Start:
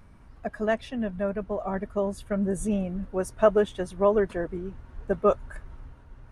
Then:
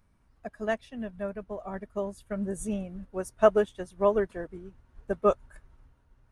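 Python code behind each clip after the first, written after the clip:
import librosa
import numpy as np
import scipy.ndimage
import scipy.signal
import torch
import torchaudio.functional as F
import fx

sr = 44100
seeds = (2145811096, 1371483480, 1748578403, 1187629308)

y = fx.high_shelf(x, sr, hz=4100.0, db=7.5)
y = fx.upward_expand(y, sr, threshold_db=-43.0, expansion=1.5)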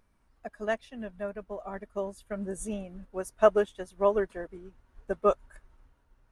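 y = fx.peak_eq(x, sr, hz=110.0, db=-7.5, octaves=2.0)
y = fx.wow_flutter(y, sr, seeds[0], rate_hz=2.1, depth_cents=26.0)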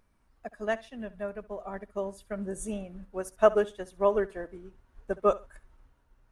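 y = fx.echo_feedback(x, sr, ms=67, feedback_pct=23, wet_db=-19.0)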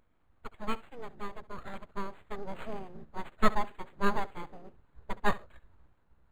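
y = np.abs(x)
y = np.interp(np.arange(len(y)), np.arange(len(y))[::8], y[::8])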